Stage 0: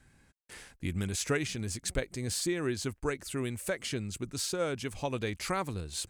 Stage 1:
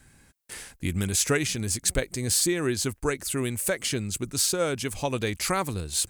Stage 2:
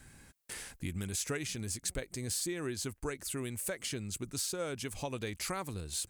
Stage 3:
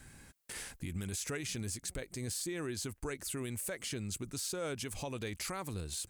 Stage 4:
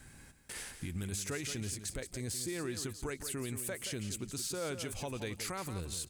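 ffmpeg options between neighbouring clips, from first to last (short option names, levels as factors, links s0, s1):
-af "highshelf=f=7400:g=11,volume=1.88"
-af "acompressor=threshold=0.00708:ratio=2"
-af "alimiter=level_in=2:limit=0.0631:level=0:latency=1:release=40,volume=0.501,volume=1.12"
-af "aecho=1:1:174|348|522:0.316|0.0601|0.0114"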